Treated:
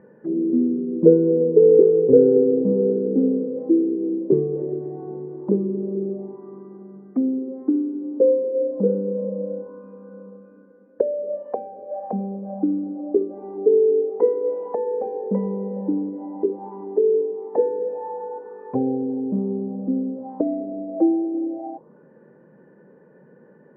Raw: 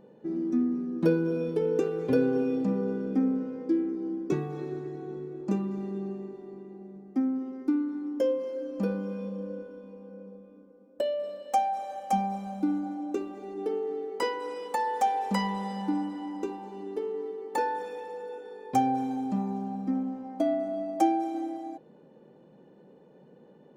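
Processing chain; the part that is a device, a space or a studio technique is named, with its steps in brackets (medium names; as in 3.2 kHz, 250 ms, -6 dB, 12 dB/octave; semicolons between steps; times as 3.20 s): envelope filter bass rig (touch-sensitive low-pass 450–1800 Hz down, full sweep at -29.5 dBFS; cabinet simulation 68–2100 Hz, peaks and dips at 290 Hz -3 dB, 760 Hz -9 dB, 1.3 kHz -7 dB); trim +4.5 dB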